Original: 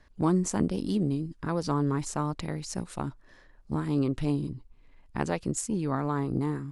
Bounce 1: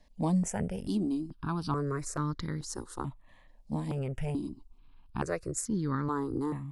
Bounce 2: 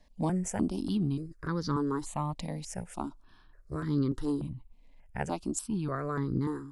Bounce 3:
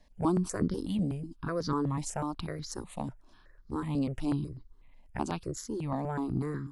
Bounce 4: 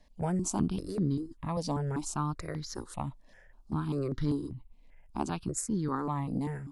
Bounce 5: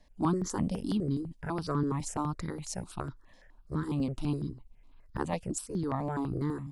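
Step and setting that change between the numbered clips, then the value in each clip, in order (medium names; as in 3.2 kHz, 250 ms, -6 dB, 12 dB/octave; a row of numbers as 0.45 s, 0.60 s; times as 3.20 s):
stepped phaser, rate: 2.3 Hz, 3.4 Hz, 8.1 Hz, 5.1 Hz, 12 Hz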